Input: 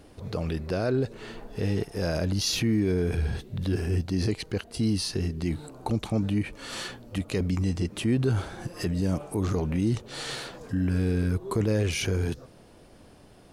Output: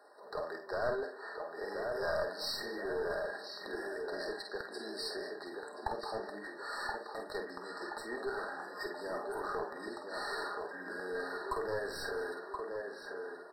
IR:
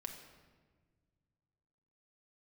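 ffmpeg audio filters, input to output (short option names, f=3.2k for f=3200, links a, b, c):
-filter_complex "[0:a]highpass=f=320:w=0.5412,highpass=f=320:w=1.3066,acrossover=split=570 2800:gain=0.1 1 0.251[a][b][c];[a][b][c]amix=inputs=3:normalize=0,asplit=2[d][e];[e]adelay=1026,lowpass=f=2.6k:p=1,volume=-5dB,asplit=2[f][g];[g]adelay=1026,lowpass=f=2.6k:p=1,volume=0.52,asplit=2[h][i];[i]adelay=1026,lowpass=f=2.6k:p=1,volume=0.52,asplit=2[j][k];[k]adelay=1026,lowpass=f=2.6k:p=1,volume=0.52,asplit=2[l][m];[m]adelay=1026,lowpass=f=2.6k:p=1,volume=0.52,asplit=2[n][o];[o]adelay=1026,lowpass=f=2.6k:p=1,volume=0.52,asplit=2[p][q];[q]adelay=1026,lowpass=f=2.6k:p=1,volume=0.52[r];[d][f][h][j][l][n][p][r]amix=inputs=8:normalize=0,acontrast=86,aecho=1:1:49|200:0.422|0.126[s];[1:a]atrim=start_sample=2205,atrim=end_sample=3087[t];[s][t]afir=irnorm=-1:irlink=0,aeval=exprs='clip(val(0),-1,0.0237)':c=same,afftfilt=real='re*eq(mod(floor(b*sr/1024/1900),2),0)':imag='im*eq(mod(floor(b*sr/1024/1900),2),0)':win_size=1024:overlap=0.75,volume=-2dB"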